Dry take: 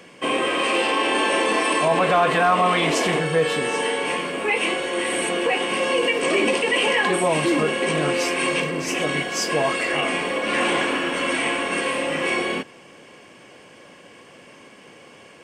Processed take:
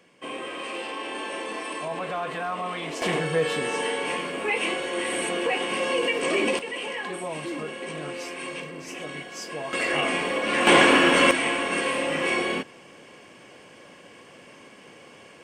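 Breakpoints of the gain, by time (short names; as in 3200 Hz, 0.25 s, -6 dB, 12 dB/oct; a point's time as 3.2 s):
-12.5 dB
from 3.02 s -4 dB
from 6.59 s -12.5 dB
from 9.73 s -2 dB
from 10.67 s +6 dB
from 11.31 s -2 dB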